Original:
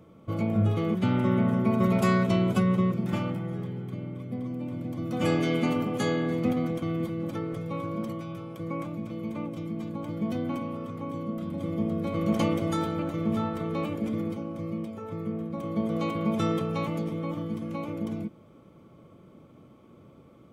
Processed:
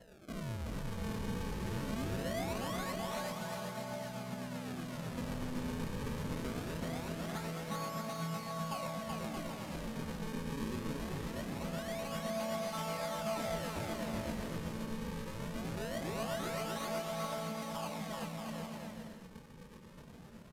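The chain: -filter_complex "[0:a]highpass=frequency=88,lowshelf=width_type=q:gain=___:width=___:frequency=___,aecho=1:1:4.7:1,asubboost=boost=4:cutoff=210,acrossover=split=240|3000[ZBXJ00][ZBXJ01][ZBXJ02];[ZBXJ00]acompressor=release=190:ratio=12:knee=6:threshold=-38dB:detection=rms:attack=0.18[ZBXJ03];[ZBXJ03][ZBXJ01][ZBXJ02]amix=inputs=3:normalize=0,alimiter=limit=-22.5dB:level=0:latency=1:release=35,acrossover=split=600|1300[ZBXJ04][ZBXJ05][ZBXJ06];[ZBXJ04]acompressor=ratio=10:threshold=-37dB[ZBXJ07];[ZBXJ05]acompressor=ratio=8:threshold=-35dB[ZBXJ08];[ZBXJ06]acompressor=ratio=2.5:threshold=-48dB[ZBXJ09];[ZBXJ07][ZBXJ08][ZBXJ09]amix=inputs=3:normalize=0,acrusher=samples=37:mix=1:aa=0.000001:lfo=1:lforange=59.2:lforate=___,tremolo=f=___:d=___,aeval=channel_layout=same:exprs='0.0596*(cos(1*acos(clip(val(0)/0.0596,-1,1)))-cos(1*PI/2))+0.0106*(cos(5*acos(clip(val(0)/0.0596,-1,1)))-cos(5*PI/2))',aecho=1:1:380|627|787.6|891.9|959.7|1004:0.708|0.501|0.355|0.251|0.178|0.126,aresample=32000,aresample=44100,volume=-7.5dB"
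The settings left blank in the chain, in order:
-7.5, 3, 490, 0.22, 7.9, 0.36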